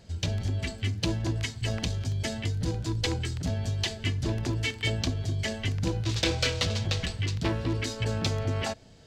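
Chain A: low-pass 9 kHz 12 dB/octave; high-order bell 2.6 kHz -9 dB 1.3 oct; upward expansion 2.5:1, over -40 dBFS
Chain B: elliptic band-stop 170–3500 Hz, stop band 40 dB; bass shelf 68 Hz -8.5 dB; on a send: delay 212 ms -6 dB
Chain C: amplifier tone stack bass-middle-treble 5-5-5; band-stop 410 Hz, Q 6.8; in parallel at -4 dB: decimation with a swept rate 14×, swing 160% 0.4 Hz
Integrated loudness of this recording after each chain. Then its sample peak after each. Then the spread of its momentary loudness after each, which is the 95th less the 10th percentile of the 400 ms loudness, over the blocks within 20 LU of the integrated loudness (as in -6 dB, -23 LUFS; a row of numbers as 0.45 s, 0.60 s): -36.0 LUFS, -33.0 LUFS, -38.5 LUFS; -17.0 dBFS, -14.5 dBFS, -17.5 dBFS; 6 LU, 5 LU, 7 LU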